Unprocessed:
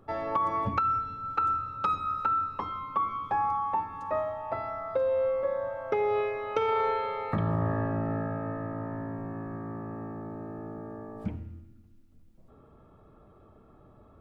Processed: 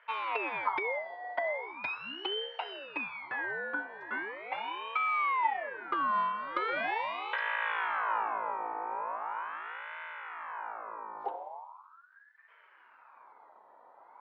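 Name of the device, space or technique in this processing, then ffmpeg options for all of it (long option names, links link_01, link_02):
voice changer toy: -af "aeval=exprs='val(0)*sin(2*PI*1200*n/s+1200*0.5/0.4*sin(2*PI*0.4*n/s))':channel_layout=same,highpass=560,equalizer=frequency=940:width_type=q:width=4:gain=9,equalizer=frequency=1900:width_type=q:width=4:gain=-6,equalizer=frequency=2800:width_type=q:width=4:gain=-5,lowpass=frequency=4000:width=0.5412,lowpass=frequency=4000:width=1.3066"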